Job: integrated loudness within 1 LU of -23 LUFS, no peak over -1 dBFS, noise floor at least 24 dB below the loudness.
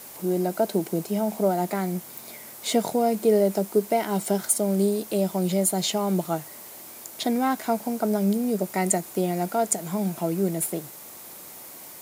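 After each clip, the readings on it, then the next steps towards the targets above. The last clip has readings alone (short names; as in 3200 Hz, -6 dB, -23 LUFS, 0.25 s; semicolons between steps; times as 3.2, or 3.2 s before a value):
noise floor -43 dBFS; noise floor target -49 dBFS; loudness -25.0 LUFS; peak -7.0 dBFS; loudness target -23.0 LUFS
-> noise print and reduce 6 dB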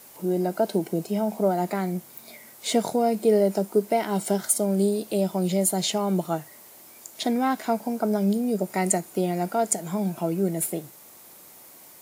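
noise floor -49 dBFS; loudness -25.0 LUFS; peak -7.0 dBFS; loudness target -23.0 LUFS
-> gain +2 dB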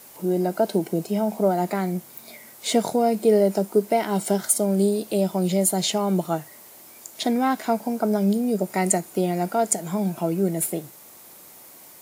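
loudness -23.0 LUFS; peak -5.0 dBFS; noise floor -47 dBFS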